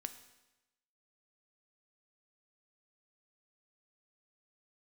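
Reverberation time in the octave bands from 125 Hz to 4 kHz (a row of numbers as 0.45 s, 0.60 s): 1.0 s, 1.0 s, 1.0 s, 1.0 s, 1.0 s, 0.95 s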